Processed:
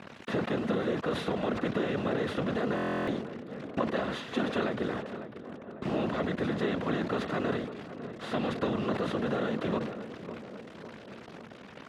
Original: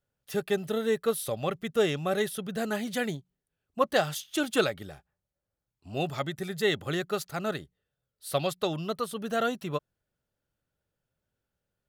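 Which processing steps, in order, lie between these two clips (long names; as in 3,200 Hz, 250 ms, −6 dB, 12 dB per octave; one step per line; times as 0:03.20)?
compressor on every frequency bin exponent 0.4
bit reduction 6 bits
random phases in short frames
feedback echo with a low-pass in the loop 550 ms, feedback 62%, low-pass 1,600 Hz, level −20 dB
downward compressor 3 to 1, threshold −31 dBFS, peak gain reduction 12.5 dB
band-pass filter 110–3,000 Hz
low-shelf EQ 260 Hz +8 dB
hollow resonant body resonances 220 Hz, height 6 dB
buffer that repeats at 0:02.75, samples 1,024, times 13
level that may fall only so fast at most 65 dB per second
level −2 dB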